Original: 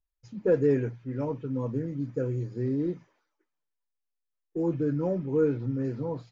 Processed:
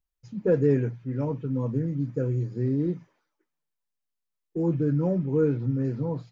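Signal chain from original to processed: peaking EQ 160 Hz +7 dB 1 oct

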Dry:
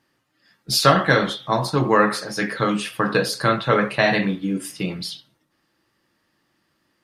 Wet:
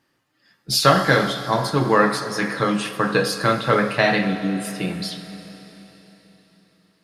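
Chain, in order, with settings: Schroeder reverb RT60 4 s, combs from 31 ms, DRR 10 dB

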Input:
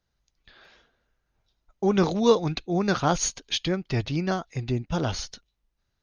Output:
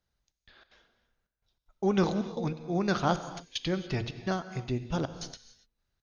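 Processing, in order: de-hum 116.5 Hz, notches 4; trance gate "xxxx..xx.xxx" 190 bpm -24 dB; gated-style reverb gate 310 ms flat, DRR 11 dB; trim -4 dB

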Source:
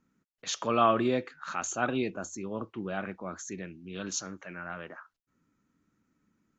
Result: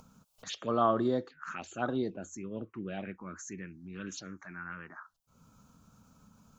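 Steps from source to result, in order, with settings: upward compressor, threshold -36 dBFS; touch-sensitive phaser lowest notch 290 Hz, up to 2.5 kHz, full sweep at -26.5 dBFS; trim -1.5 dB

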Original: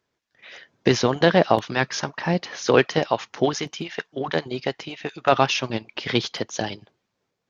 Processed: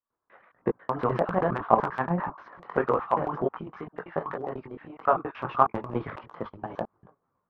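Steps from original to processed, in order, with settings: slices played last to first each 99 ms, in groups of 3; chorus voices 6, 1.2 Hz, delay 20 ms, depth 3.6 ms; four-pole ladder low-pass 1.3 kHz, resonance 60%; transient shaper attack +7 dB, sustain +11 dB; trim +1 dB

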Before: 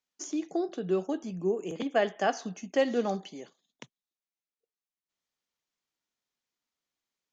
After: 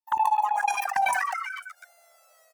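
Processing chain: vocoder on a note that slides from D#4, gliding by -6 st; on a send: frequency-shifting echo 360 ms, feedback 59%, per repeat +65 Hz, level -22.5 dB; on the sum: wide varispeed 2.89×; peaking EQ 3.3 kHz -9 dB 0.96 oct; in parallel at +0.5 dB: level held to a coarse grid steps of 16 dB; on the sum: touch-sensitive flanger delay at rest 11.4 ms, full sweep at -24.5 dBFS; hum notches 60/120/180/240/300/360/420 Hz; decay stretcher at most 27 dB/s; trim +4.5 dB

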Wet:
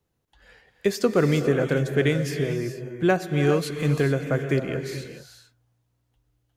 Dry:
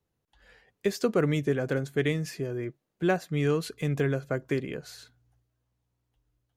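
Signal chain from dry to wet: gated-style reverb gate 460 ms rising, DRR 6.5 dB; trim +4.5 dB

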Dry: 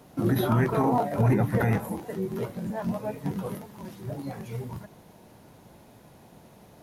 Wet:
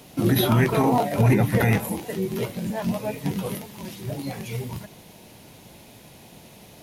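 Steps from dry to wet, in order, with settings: resonant high shelf 1.9 kHz +7 dB, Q 1.5; trim +4 dB

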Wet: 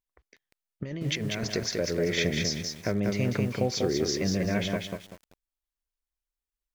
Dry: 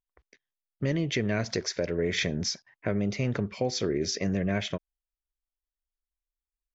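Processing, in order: 0.83–1.51 s: compressor with a negative ratio -31 dBFS, ratio -0.5; bit-crushed delay 193 ms, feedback 35%, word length 8-bit, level -3.5 dB

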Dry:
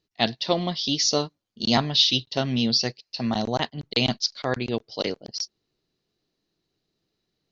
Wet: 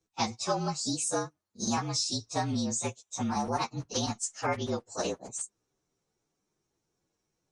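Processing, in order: frequency axis rescaled in octaves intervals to 113%; compression 4:1, threshold -29 dBFS, peak gain reduction 10 dB; peaking EQ 1.1 kHz +7 dB 1.2 oct

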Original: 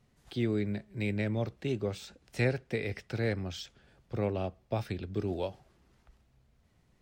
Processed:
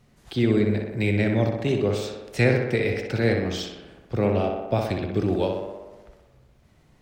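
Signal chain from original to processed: tape echo 62 ms, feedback 76%, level -3.5 dB, low-pass 3.1 kHz; trim +8.5 dB

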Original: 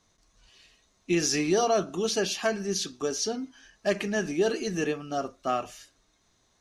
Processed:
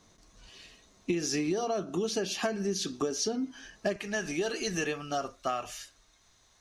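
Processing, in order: peaking EQ 260 Hz +4.5 dB 2.5 oct, from 3.96 s -8 dB; compression 16:1, threshold -32 dBFS, peak gain reduction 16.5 dB; trim +5 dB

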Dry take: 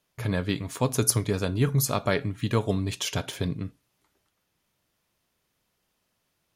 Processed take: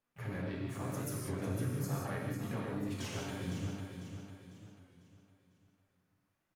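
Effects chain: resonant high shelf 2.4 kHz -6.5 dB, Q 1.5; harmony voices +3 st -12 dB, +5 st -11 dB; compression, threshold -24 dBFS, peak gain reduction 7.5 dB; peak limiter -20.5 dBFS, peak gain reduction 7 dB; flange 0.44 Hz, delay 3.6 ms, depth 8 ms, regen +76%; on a send: feedback delay 499 ms, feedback 41%, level -7.5 dB; on the sum: gated-style reverb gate 220 ms flat, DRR -3 dB; warped record 33 1/3 rpm, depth 100 cents; trim -7.5 dB

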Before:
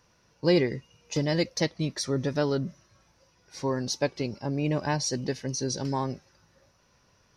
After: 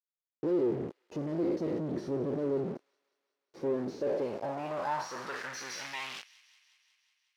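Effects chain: spectral sustain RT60 0.48 s; 0.63–2.65 s: bass shelf 320 Hz +10 dB; peak limiter -18 dBFS, peak gain reduction 11 dB; companded quantiser 2-bit; band-pass sweep 370 Hz -> 3.4 kHz, 3.90–6.33 s; feedback echo behind a high-pass 183 ms, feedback 68%, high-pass 2.4 kHz, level -18.5 dB; trim +1 dB

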